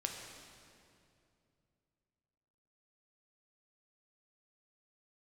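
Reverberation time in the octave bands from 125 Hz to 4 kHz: 3.5, 3.1, 2.8, 2.3, 2.2, 2.0 s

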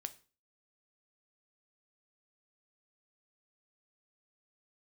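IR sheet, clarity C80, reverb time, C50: 22.5 dB, 0.35 s, 18.0 dB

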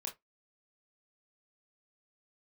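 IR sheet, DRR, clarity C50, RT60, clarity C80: -0.5 dB, 14.5 dB, 0.15 s, 27.0 dB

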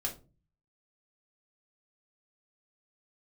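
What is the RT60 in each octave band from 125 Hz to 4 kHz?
0.75, 0.55, 0.40, 0.30, 0.20, 0.20 s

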